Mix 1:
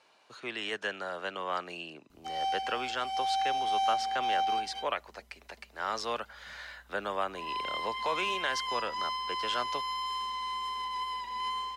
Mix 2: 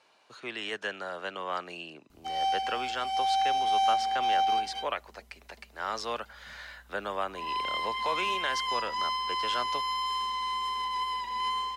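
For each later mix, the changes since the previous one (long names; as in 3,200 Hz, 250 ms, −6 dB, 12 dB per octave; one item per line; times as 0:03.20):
background +3.5 dB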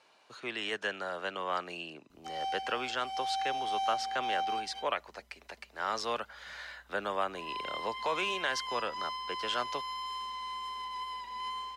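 background −7.5 dB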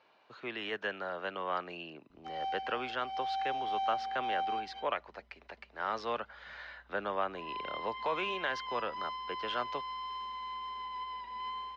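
master: add high-frequency loss of the air 240 metres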